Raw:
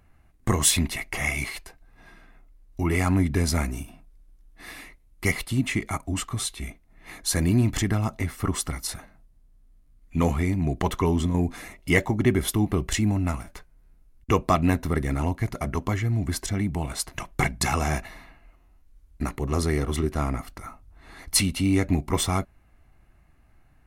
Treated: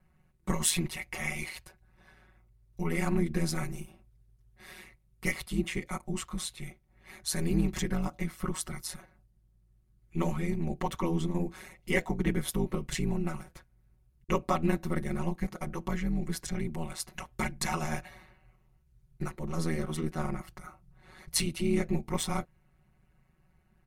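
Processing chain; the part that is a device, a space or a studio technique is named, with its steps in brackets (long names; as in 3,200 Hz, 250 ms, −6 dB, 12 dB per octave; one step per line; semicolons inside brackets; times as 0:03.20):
ring-modulated robot voice (ring modulation 80 Hz; comb filter 5.4 ms, depth 99%)
level −7.5 dB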